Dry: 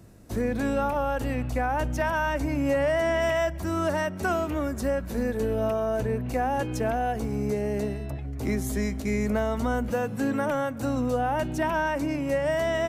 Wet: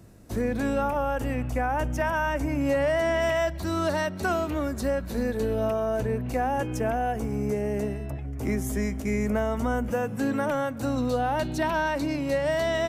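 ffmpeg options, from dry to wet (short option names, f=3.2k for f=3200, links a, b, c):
-af "asetnsamples=n=441:p=0,asendcmd='0.82 equalizer g -7.5;2.61 equalizer g 3.5;3.47 equalizer g 12.5;4.2 equalizer g 6;5.65 equalizer g -0.5;6.51 equalizer g -9.5;10.19 equalizer g 2.5;10.98 equalizer g 13.5',equalizer=f=4.1k:t=o:w=0.37:g=0"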